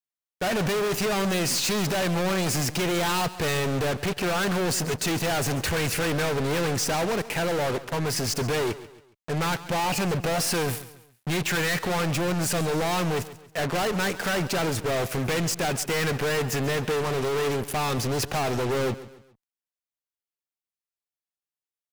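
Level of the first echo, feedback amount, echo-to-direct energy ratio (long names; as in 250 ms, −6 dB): −16.0 dB, 39%, −15.5 dB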